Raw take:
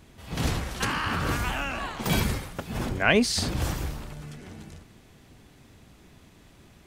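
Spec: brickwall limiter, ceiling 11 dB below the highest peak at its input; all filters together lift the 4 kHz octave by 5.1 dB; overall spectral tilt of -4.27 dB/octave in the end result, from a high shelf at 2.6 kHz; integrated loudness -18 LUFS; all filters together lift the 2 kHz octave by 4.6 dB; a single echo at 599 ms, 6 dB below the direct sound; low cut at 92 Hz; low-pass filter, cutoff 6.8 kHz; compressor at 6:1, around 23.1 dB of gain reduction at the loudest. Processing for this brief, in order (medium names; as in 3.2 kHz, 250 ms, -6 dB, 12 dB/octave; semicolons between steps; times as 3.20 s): high-pass 92 Hz; low-pass 6.8 kHz; peaking EQ 2 kHz +5.5 dB; treble shelf 2.6 kHz -3.5 dB; peaking EQ 4 kHz +8.5 dB; compression 6:1, threshold -39 dBFS; peak limiter -35.5 dBFS; delay 599 ms -6 dB; trim +26.5 dB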